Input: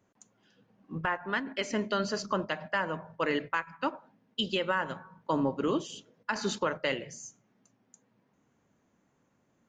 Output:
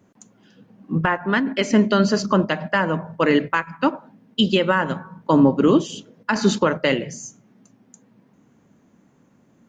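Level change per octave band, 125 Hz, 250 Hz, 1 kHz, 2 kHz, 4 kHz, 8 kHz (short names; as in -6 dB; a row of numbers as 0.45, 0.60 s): +16.0, +15.5, +9.5, +9.0, +9.0, +9.0 dB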